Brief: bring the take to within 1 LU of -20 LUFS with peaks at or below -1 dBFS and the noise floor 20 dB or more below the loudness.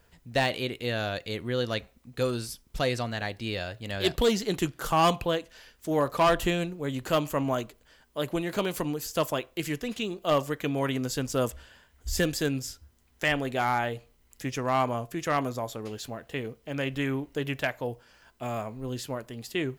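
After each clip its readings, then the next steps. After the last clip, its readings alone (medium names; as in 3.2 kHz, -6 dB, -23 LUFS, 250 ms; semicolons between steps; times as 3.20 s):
clipped samples 0.4%; clipping level -16.5 dBFS; loudness -29.5 LUFS; peak level -16.5 dBFS; loudness target -20.0 LUFS
-> clip repair -16.5 dBFS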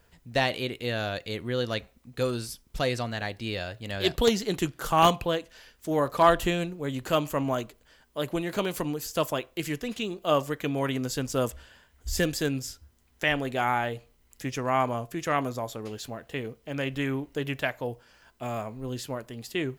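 clipped samples 0.0%; loudness -29.0 LUFS; peak level -7.5 dBFS; loudness target -20.0 LUFS
-> trim +9 dB; peak limiter -1 dBFS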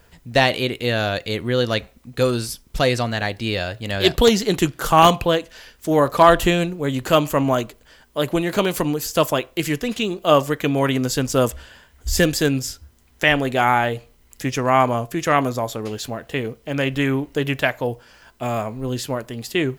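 loudness -20.5 LUFS; peak level -1.0 dBFS; noise floor -54 dBFS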